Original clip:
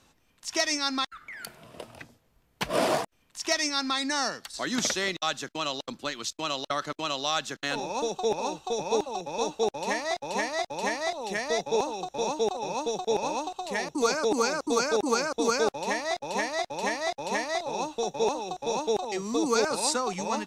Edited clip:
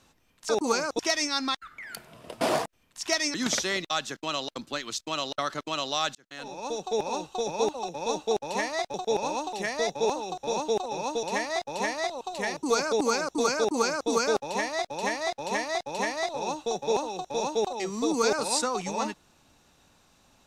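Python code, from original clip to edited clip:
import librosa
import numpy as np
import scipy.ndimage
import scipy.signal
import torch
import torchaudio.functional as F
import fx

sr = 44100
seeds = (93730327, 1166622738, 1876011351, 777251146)

y = fx.edit(x, sr, fx.cut(start_s=1.91, length_s=0.89),
    fx.cut(start_s=3.73, length_s=0.93),
    fx.fade_in_span(start_s=7.47, length_s=1.18, curve='qsin'),
    fx.swap(start_s=10.26, length_s=0.98, other_s=12.94, other_length_s=0.59),
    fx.duplicate(start_s=14.91, length_s=0.5, to_s=0.49), tone=tone)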